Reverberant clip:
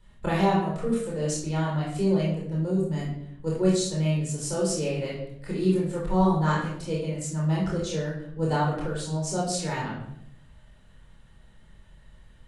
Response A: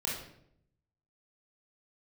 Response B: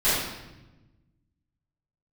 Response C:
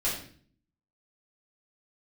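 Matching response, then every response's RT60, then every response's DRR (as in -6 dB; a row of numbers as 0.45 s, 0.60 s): A; 0.70 s, 1.0 s, 0.50 s; -5.5 dB, -16.5 dB, -9.0 dB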